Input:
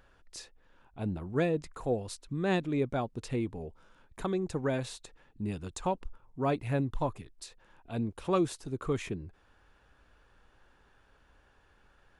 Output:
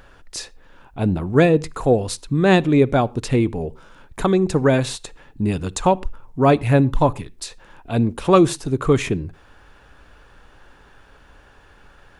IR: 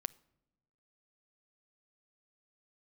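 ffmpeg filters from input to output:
-filter_complex "[0:a]asplit=2[a][b];[1:a]atrim=start_sample=2205,atrim=end_sample=6174[c];[b][c]afir=irnorm=-1:irlink=0,volume=17dB[d];[a][d]amix=inputs=2:normalize=0,volume=-2.5dB"

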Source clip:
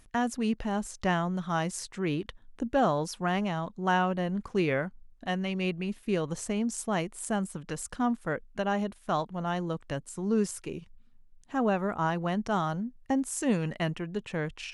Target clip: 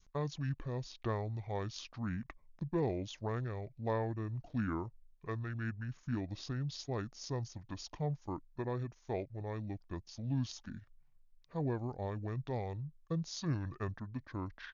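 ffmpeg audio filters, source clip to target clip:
-af "asetrate=26990,aresample=44100,atempo=1.63392,adynamicequalizer=threshold=0.00891:dfrequency=700:dqfactor=0.75:tfrequency=700:tqfactor=0.75:attack=5:release=100:ratio=0.375:range=3.5:mode=cutabove:tftype=bell,volume=-8dB"

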